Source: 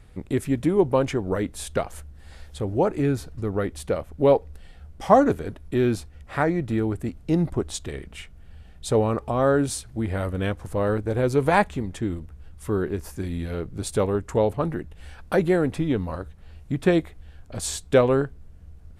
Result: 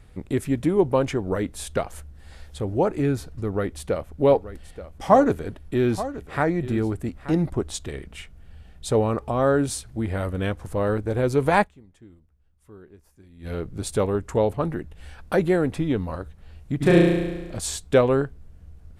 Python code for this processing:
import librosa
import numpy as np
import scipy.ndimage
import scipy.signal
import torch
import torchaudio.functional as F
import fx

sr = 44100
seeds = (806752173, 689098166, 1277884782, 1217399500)

y = fx.echo_single(x, sr, ms=879, db=-14.0, at=(4.3, 7.44), fade=0.02)
y = fx.room_flutter(y, sr, wall_m=6.0, rt60_s=1.2, at=(16.8, 17.56), fade=0.02)
y = fx.edit(y, sr, fx.fade_down_up(start_s=11.62, length_s=1.85, db=-21.5, fade_s=0.3, curve='exp'), tone=tone)